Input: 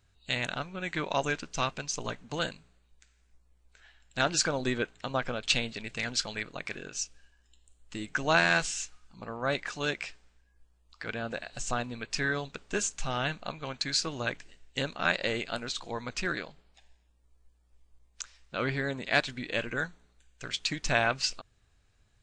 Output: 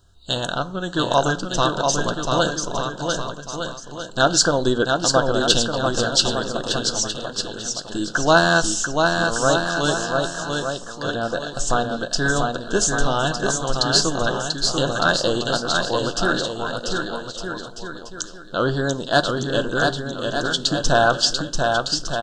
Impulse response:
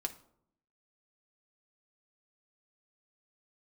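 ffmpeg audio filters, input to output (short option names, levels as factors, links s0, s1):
-filter_complex "[0:a]acontrast=69,asuperstop=centerf=2200:order=8:qfactor=1.6,equalizer=f=520:w=5:g=2.5,aecho=1:1:690|1208|1596|1887|2105:0.631|0.398|0.251|0.158|0.1,asplit=2[s0][s1];[1:a]atrim=start_sample=2205[s2];[s1][s2]afir=irnorm=-1:irlink=0,volume=0.891[s3];[s0][s3]amix=inputs=2:normalize=0,volume=0.891"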